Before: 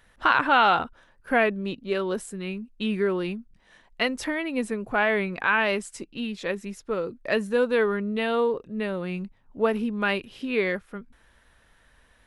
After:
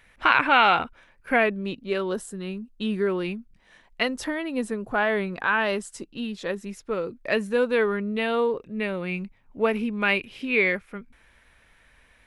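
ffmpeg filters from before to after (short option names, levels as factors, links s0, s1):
-af "asetnsamples=n=441:p=0,asendcmd='1.36 equalizer g 2;2.13 equalizer g -7.5;3.07 equalizer g 4;4.03 equalizer g -6;6.69 equalizer g 4;8.58 equalizer g 10.5',equalizer=f=2300:t=o:w=0.38:g=12.5"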